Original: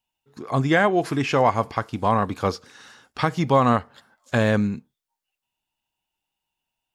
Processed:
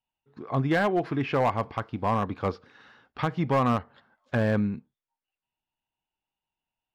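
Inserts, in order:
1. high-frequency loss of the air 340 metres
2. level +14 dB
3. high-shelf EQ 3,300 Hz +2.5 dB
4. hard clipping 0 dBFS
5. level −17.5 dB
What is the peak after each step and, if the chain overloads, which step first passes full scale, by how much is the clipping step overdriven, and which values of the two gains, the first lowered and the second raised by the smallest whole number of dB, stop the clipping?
−7.5, +6.5, +6.5, 0.0, −17.5 dBFS
step 2, 6.5 dB
step 2 +7 dB, step 5 −10.5 dB

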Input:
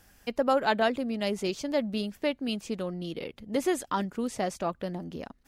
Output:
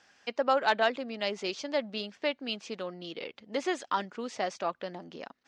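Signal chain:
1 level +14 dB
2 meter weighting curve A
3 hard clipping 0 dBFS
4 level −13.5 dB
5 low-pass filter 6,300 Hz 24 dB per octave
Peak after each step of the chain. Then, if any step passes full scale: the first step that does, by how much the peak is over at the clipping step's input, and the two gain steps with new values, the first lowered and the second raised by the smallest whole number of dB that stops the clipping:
+0.5, +3.5, 0.0, −13.5, −12.5 dBFS
step 1, 3.5 dB
step 1 +10 dB, step 4 −9.5 dB

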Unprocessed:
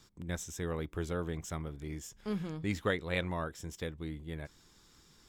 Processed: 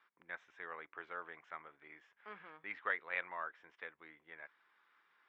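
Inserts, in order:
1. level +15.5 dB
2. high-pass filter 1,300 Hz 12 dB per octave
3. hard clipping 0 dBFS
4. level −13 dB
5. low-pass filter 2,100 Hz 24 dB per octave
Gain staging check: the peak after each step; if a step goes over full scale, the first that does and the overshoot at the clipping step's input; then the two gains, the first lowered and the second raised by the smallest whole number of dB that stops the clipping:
−3.0, −5.0, −5.0, −18.0, −22.0 dBFS
no step passes full scale

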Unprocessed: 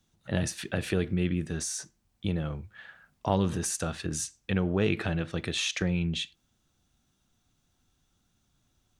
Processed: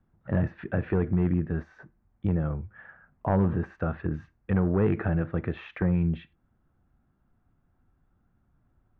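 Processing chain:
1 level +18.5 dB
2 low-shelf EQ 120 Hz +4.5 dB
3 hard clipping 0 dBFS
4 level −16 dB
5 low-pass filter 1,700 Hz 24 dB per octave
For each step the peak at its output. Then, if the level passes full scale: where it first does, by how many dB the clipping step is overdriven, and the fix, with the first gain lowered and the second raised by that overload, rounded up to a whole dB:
+7.0, +7.5, 0.0, −16.0, −15.0 dBFS
step 1, 7.5 dB
step 1 +10.5 dB, step 4 −8 dB

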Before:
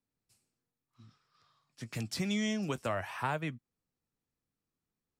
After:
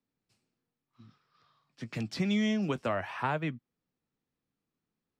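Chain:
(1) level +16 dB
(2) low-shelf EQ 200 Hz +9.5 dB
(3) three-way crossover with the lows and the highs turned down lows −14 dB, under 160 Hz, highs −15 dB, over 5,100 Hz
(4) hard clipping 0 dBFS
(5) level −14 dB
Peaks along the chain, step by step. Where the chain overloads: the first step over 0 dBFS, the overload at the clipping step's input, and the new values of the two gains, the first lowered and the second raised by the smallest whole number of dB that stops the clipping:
−3.5, −2.5, −2.5, −2.5, −16.5 dBFS
no step passes full scale

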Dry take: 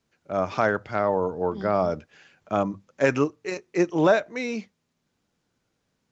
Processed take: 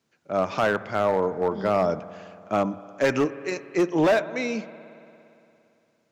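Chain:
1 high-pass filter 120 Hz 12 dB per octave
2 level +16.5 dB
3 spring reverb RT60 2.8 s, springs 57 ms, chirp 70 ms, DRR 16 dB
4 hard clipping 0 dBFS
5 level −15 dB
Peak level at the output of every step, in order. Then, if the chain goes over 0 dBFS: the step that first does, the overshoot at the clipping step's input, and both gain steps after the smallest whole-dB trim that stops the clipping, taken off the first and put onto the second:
−8.5, +8.0, +8.5, 0.0, −15.0 dBFS
step 2, 8.5 dB
step 2 +7.5 dB, step 5 −6 dB

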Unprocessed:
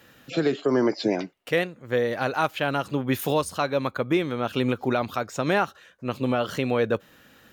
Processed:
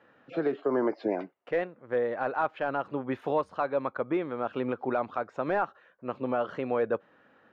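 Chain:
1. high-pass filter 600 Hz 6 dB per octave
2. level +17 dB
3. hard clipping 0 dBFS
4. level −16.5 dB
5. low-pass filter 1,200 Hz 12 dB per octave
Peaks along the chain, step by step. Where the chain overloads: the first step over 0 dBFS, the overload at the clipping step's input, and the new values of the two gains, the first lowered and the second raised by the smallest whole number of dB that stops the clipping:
−10.5, +6.5, 0.0, −16.5, −16.5 dBFS
step 2, 6.5 dB
step 2 +10 dB, step 4 −9.5 dB

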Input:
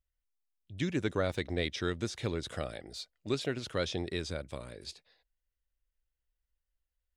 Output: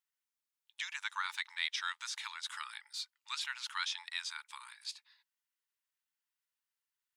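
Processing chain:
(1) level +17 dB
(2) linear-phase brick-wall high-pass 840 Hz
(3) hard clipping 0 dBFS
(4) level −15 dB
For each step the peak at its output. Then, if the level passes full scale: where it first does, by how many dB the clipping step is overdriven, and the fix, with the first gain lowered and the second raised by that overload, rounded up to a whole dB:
−1.0, −3.0, −3.0, −18.0 dBFS
no step passes full scale

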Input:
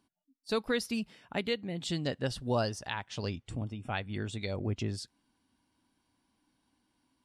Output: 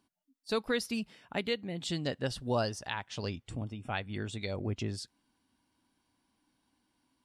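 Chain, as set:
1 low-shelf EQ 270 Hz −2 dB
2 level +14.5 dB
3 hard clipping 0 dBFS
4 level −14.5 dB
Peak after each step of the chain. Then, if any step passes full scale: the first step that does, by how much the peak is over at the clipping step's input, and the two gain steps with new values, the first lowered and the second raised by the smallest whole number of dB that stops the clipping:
−18.5, −4.0, −4.0, −18.5 dBFS
no step passes full scale

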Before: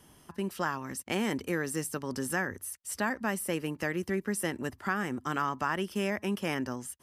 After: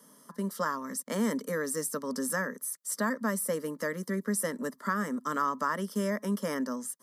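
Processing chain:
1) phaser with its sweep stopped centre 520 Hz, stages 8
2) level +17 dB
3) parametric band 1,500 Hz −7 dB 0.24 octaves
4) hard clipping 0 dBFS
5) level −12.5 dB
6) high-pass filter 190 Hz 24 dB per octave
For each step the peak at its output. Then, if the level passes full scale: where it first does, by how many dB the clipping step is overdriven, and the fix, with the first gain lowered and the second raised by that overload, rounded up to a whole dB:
−19.5, −2.5, −3.5, −3.5, −16.0, −16.5 dBFS
no step passes full scale

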